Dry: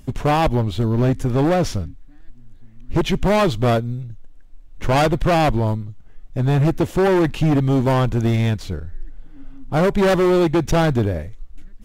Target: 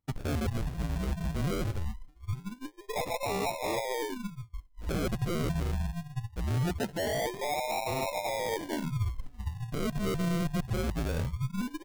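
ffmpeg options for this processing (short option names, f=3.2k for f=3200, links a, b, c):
-af "afftfilt=real='real(if(between(b,1,1008),(2*floor((b-1)/48)+1)*48-b,b),0)':imag='imag(if(between(b,1,1008),(2*floor((b-1)/48)+1)*48-b,b),0)*if(between(b,1,1008),-1,1)':win_size=2048:overlap=0.75,agate=range=-33dB:threshold=-26dB:ratio=3:detection=peak,acrusher=samples=40:mix=1:aa=0.000001:lfo=1:lforange=24:lforate=0.22,areverse,acompressor=threshold=-31dB:ratio=8,areverse,adynamicequalizer=threshold=0.00501:dfrequency=120:dqfactor=1:tfrequency=120:tqfactor=1:attack=5:release=100:ratio=0.375:range=2.5:mode=boostabove:tftype=bell"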